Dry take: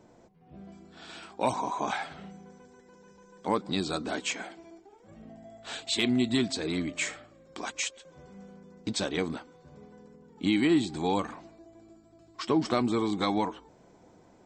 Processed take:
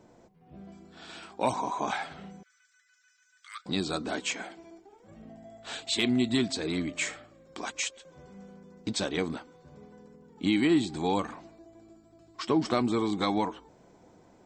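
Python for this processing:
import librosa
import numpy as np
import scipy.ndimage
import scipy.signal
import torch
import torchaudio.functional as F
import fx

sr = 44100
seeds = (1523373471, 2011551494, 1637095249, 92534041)

y = fx.cheby1_highpass(x, sr, hz=1200.0, order=8, at=(2.43, 3.66))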